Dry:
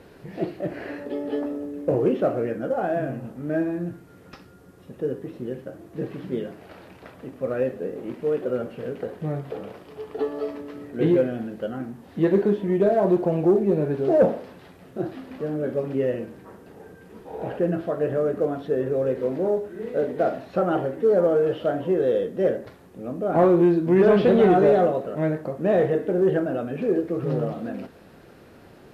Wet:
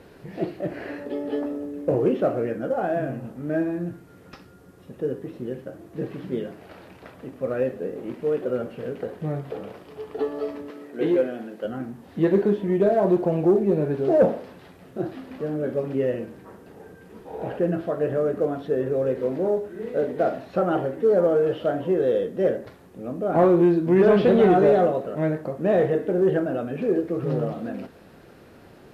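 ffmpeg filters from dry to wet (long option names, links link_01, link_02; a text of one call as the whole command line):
ffmpeg -i in.wav -filter_complex "[0:a]asettb=1/sr,asplit=3[link_01][link_02][link_03];[link_01]atrim=end=10.704[link_04];[link_02]atrim=start=10.7:end=11.65,asetpts=PTS-STARTPTS,afade=type=in:duration=0.004:curve=qsin,afade=type=out:start_time=0.946:duration=0.004:curve=qsin,highpass=290[link_05];[link_03]atrim=start=11.646[link_06];[link_04][link_05]acrossfade=duration=0.004:curve1=hsin:curve2=qsin[link_07];[link_07][link_06]acrossfade=duration=0.004:curve1=qsin:curve2=hsin" out.wav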